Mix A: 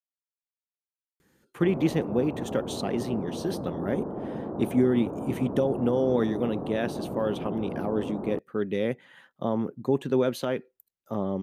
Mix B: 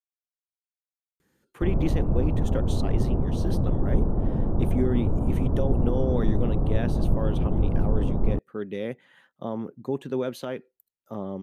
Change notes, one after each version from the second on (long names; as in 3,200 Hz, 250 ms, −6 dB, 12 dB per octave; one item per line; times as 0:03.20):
speech −4.0 dB
background: remove high-pass filter 280 Hz 12 dB per octave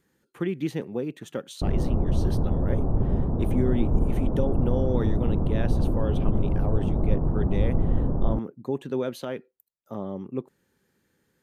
speech: entry −1.20 s